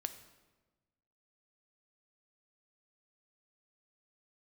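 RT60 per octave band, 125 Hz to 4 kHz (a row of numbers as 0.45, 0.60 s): 1.7, 1.5, 1.3, 1.2, 1.0, 0.90 s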